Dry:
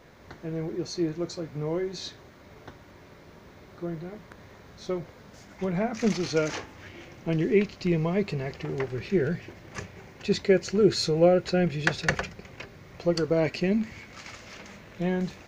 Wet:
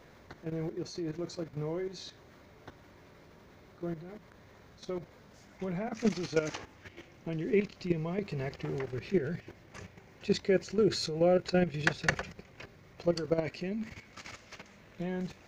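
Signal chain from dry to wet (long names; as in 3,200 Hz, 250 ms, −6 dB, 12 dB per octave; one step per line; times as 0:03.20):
output level in coarse steps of 11 dB
level −1.5 dB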